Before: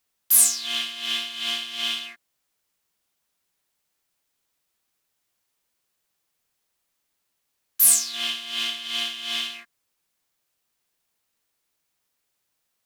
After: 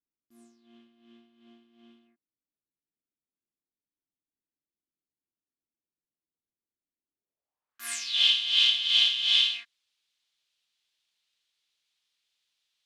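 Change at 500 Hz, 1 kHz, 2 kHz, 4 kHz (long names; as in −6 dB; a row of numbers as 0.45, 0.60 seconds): below −10 dB, −11.5 dB, −2.0 dB, +2.5 dB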